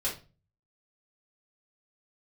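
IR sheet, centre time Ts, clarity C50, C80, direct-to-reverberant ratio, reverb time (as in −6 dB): 25 ms, 8.0 dB, 15.0 dB, −7.0 dB, 0.35 s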